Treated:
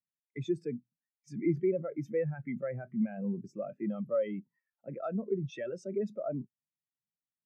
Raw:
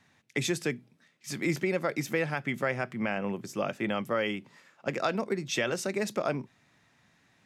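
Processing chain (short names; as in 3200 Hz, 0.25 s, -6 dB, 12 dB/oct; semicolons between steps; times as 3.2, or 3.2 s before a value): in parallel at -0.5 dB: negative-ratio compressor -40 dBFS, ratio -1; on the sum: soft clip -18 dBFS, distortion -20 dB; spectral expander 2.5:1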